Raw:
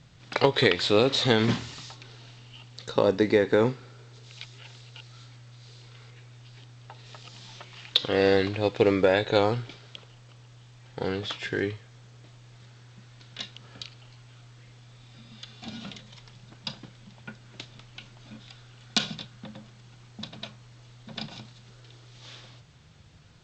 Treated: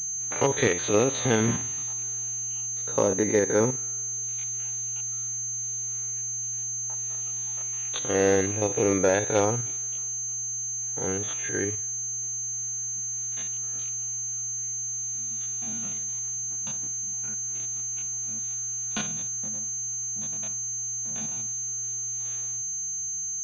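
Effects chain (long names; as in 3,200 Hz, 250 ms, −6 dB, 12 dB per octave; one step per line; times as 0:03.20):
spectrum averaged block by block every 50 ms
switching amplifier with a slow clock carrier 6,300 Hz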